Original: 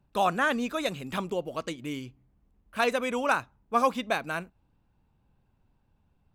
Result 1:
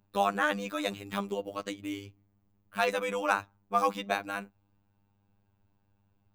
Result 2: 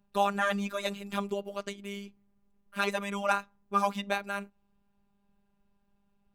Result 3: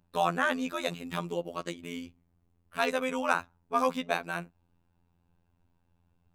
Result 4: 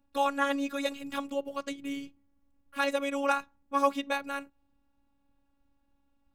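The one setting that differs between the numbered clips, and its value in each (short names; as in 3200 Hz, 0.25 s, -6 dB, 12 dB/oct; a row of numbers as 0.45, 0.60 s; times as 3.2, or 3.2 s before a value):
robotiser, frequency: 100, 200, 86, 280 Hz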